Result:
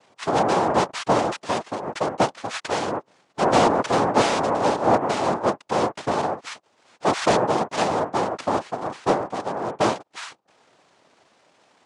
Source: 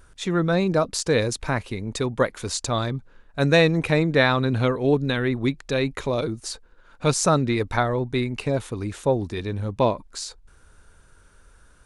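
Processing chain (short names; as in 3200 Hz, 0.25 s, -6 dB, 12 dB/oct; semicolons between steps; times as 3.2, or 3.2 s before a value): noise vocoder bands 2; overdrive pedal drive 12 dB, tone 1100 Hz, clips at -3 dBFS; MP3 128 kbps 24000 Hz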